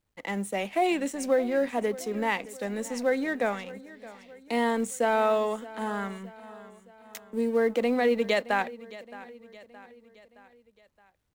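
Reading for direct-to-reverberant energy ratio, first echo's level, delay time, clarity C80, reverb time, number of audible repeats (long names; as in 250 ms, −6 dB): no reverb audible, −18.0 dB, 619 ms, no reverb audible, no reverb audible, 3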